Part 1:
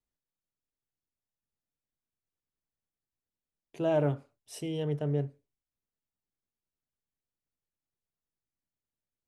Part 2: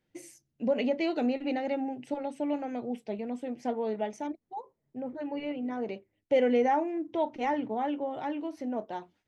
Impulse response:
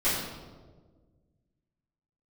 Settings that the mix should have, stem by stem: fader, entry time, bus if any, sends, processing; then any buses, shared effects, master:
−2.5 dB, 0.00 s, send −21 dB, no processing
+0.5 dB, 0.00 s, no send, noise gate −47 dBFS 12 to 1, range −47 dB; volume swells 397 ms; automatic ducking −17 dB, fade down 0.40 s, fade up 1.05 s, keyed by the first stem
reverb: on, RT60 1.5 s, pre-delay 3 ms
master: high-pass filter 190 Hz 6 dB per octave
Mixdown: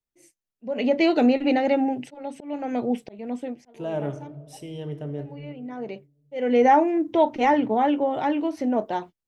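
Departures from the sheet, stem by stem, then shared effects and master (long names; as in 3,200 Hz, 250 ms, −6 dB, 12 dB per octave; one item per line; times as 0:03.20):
stem 2 +0.5 dB → +10.0 dB
master: missing high-pass filter 190 Hz 6 dB per octave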